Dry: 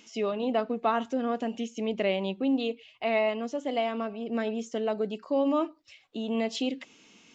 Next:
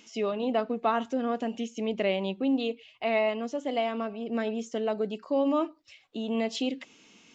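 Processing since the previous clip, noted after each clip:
no processing that can be heard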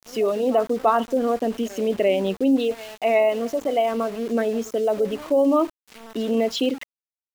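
spectral envelope exaggerated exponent 1.5
backwards echo 342 ms −19 dB
centre clipping without the shift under −42.5 dBFS
level +7.5 dB

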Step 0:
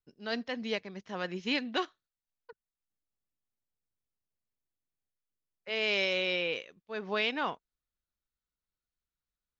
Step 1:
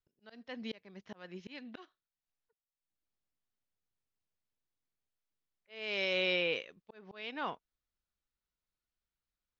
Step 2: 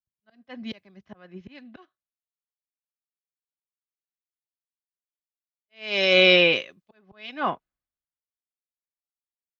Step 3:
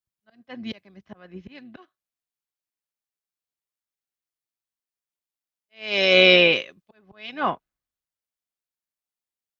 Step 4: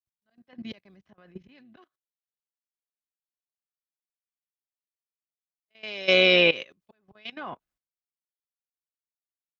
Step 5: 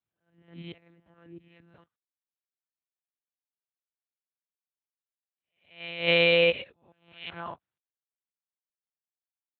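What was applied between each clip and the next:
low-pass filter 5,500 Hz 12 dB per octave; volume swells 571 ms
notch comb filter 460 Hz; multiband upward and downward expander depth 100%; level +8 dB
amplitude modulation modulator 110 Hz, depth 15%; level +3 dB
output level in coarse steps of 18 dB
peak hold with a rise ahead of every peak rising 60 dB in 0.42 s; one-pitch LPC vocoder at 8 kHz 170 Hz; level −2.5 dB; Speex 34 kbit/s 16,000 Hz

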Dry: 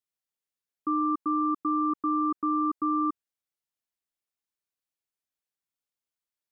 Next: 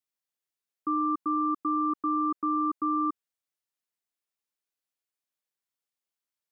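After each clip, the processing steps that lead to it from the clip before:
low-shelf EQ 150 Hz −8.5 dB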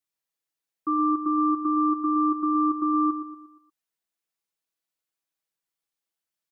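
comb filter 6.1 ms
repeating echo 118 ms, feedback 44%, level −10 dB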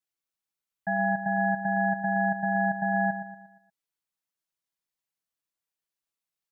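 ring modulation 500 Hz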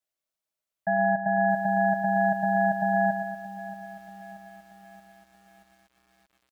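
parametric band 610 Hz +12.5 dB 0.3 octaves
feedback echo at a low word length 630 ms, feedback 55%, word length 8 bits, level −14.5 dB

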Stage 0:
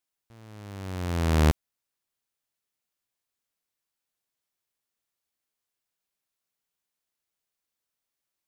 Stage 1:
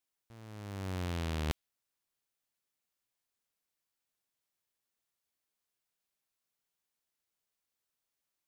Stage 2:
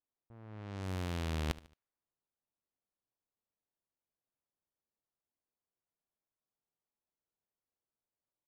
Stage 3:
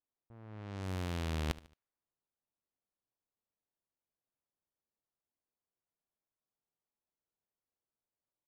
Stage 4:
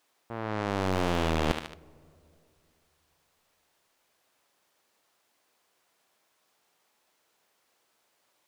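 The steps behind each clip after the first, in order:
dynamic equaliser 3,200 Hz, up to +6 dB, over −48 dBFS, Q 1.1; reversed playback; downward compressor 10 to 1, threshold −30 dBFS, peak gain reduction 14 dB; reversed playback; level −2 dB
low-pass that shuts in the quiet parts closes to 910 Hz, open at −35 dBFS; repeating echo 74 ms, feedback 39%, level −18 dB; level −1 dB
no processing that can be heard
mid-hump overdrive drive 28 dB, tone 4,500 Hz, clips at −16.5 dBFS; on a send at −23.5 dB: convolution reverb RT60 2.5 s, pre-delay 3 ms; on the sum: level +5.5 dB

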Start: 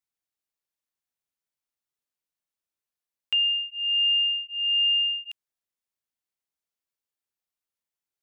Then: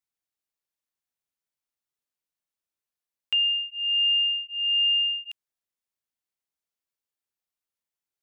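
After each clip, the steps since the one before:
no processing that can be heard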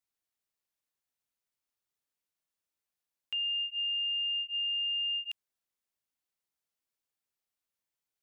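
brickwall limiter −29 dBFS, peak gain reduction 10.5 dB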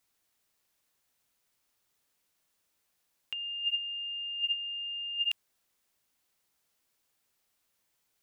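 compressor whose output falls as the input rises −38 dBFS, ratio −0.5
level +5.5 dB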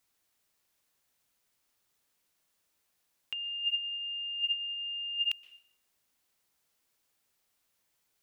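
dense smooth reverb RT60 0.59 s, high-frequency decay 0.95×, pre-delay 110 ms, DRR 17 dB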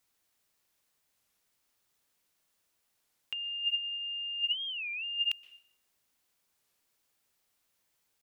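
wow of a warped record 33 1/3 rpm, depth 250 cents

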